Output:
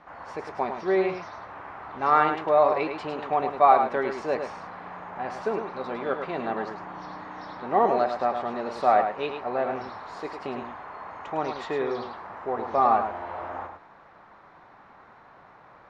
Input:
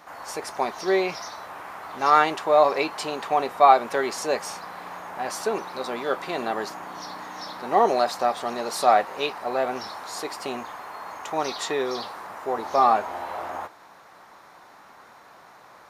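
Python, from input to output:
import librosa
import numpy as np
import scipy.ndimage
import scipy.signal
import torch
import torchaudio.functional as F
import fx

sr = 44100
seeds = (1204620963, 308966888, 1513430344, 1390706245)

y = scipy.signal.sosfilt(scipy.signal.butter(2, 2400.0, 'lowpass', fs=sr, output='sos'), x)
y = fx.low_shelf(y, sr, hz=140.0, db=10.5)
y = y + 10.0 ** (-7.0 / 20.0) * np.pad(y, (int(105 * sr / 1000.0), 0))[:len(y)]
y = y * 10.0 ** (-3.0 / 20.0)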